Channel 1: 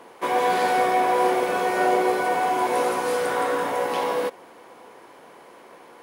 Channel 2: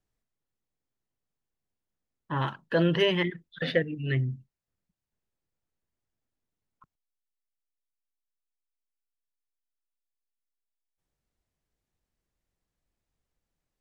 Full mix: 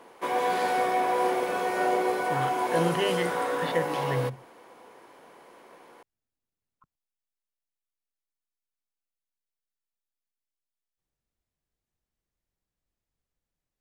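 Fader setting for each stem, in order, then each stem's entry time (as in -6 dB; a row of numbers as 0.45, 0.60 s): -5.0, -4.0 dB; 0.00, 0.00 s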